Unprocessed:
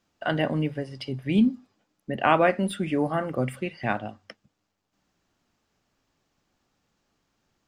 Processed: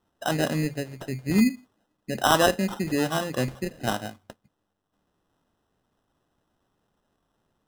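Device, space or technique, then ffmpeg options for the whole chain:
crushed at another speed: -af "asetrate=22050,aresample=44100,acrusher=samples=39:mix=1:aa=0.000001,asetrate=88200,aresample=44100"

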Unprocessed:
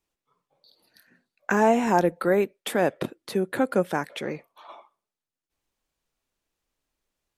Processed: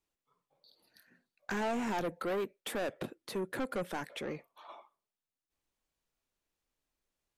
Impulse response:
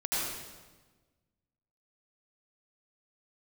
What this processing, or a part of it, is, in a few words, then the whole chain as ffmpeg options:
saturation between pre-emphasis and de-emphasis: -af "highshelf=frequency=9000:gain=9,asoftclip=type=tanh:threshold=-25dB,highshelf=frequency=9000:gain=-9,volume=-5.5dB"

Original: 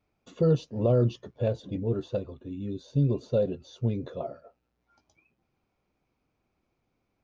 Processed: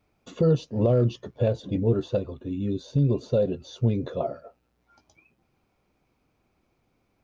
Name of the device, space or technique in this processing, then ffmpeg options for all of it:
clipper into limiter: -af "asoftclip=type=hard:threshold=-14.5dB,alimiter=limit=-19.5dB:level=0:latency=1:release=337,volume=6.5dB"

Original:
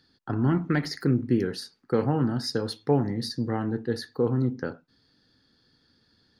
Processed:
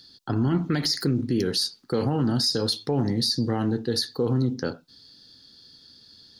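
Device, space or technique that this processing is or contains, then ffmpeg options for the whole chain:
over-bright horn tweeter: -af "highshelf=frequency=2800:width_type=q:width=1.5:gain=10,alimiter=limit=-19.5dB:level=0:latency=1:release=37,volume=4.5dB"

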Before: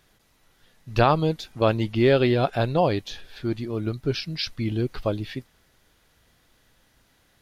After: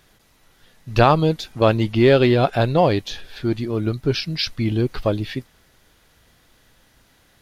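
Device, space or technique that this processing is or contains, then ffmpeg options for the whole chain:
parallel distortion: -filter_complex "[0:a]asplit=2[link_01][link_02];[link_02]asoftclip=type=hard:threshold=-23.5dB,volume=-14dB[link_03];[link_01][link_03]amix=inputs=2:normalize=0,volume=4dB"

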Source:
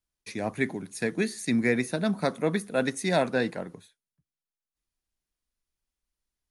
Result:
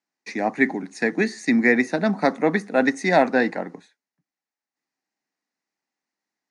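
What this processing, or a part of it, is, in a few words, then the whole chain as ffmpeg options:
television speaker: -af "highpass=frequency=180:width=0.5412,highpass=frequency=180:width=1.3066,equalizer=frequency=280:width_type=q:width=4:gain=6,equalizer=frequency=800:width_type=q:width=4:gain=9,equalizer=frequency=1900:width_type=q:width=4:gain=8,equalizer=frequency=3300:width_type=q:width=4:gain=-9,lowpass=frequency=6700:width=0.5412,lowpass=frequency=6700:width=1.3066,volume=4.5dB"

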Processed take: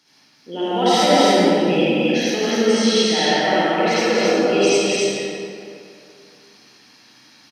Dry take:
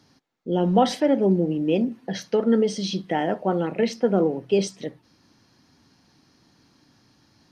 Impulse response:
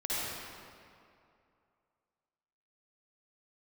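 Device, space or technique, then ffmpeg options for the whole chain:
stadium PA: -filter_complex "[0:a]highpass=180,tiltshelf=frequency=1100:gain=-6.5,equalizer=frequency=2500:width_type=o:width=0.48:gain=5.5,aecho=1:1:172|271.1:0.282|0.794[link_01];[1:a]atrim=start_sample=2205[link_02];[link_01][link_02]afir=irnorm=-1:irlink=0"

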